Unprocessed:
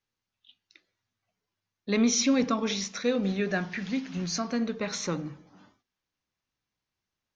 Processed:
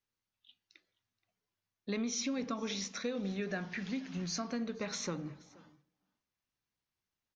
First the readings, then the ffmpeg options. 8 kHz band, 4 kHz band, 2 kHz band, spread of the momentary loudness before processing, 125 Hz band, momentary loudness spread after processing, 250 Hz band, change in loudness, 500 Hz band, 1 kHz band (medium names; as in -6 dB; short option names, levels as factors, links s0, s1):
no reading, -8.0 dB, -8.5 dB, 9 LU, -7.5 dB, 6 LU, -10.0 dB, -9.5 dB, -9.5 dB, -9.5 dB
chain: -filter_complex "[0:a]acompressor=threshold=0.0398:ratio=5,asplit=2[s0][s1];[s1]aecho=0:1:476:0.0668[s2];[s0][s2]amix=inputs=2:normalize=0,volume=0.562"